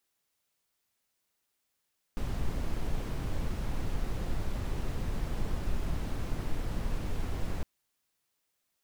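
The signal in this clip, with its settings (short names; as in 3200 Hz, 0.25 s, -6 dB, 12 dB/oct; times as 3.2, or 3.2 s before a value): noise brown, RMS -30.5 dBFS 5.46 s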